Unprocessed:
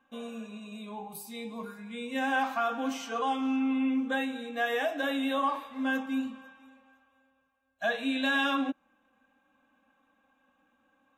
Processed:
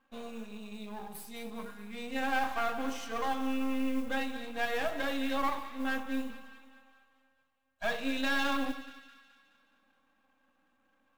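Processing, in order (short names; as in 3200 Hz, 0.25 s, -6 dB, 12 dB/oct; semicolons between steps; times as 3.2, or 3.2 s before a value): half-wave gain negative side -12 dB; split-band echo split 1300 Hz, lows 92 ms, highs 0.212 s, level -13 dB; modulation noise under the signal 27 dB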